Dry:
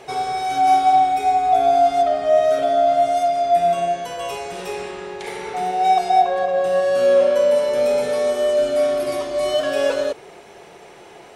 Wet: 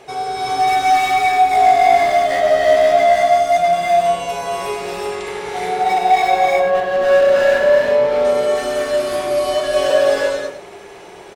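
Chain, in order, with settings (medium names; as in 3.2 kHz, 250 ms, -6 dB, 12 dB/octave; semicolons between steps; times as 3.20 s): 5.83–8.25 s: low-pass 2.9 kHz; wavefolder -13 dBFS; delay 102 ms -10 dB; gated-style reverb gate 400 ms rising, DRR -4.5 dB; trim -1 dB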